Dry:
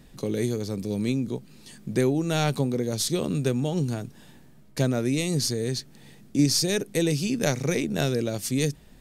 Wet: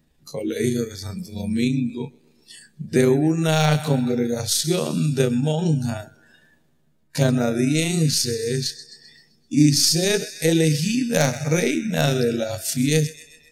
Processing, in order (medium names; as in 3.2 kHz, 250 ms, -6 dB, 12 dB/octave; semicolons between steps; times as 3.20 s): granular stretch 1.5×, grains 76 ms; wavefolder -10.5 dBFS; thinning echo 130 ms, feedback 69%, high-pass 210 Hz, level -14 dB; spectral noise reduction 17 dB; trim +6.5 dB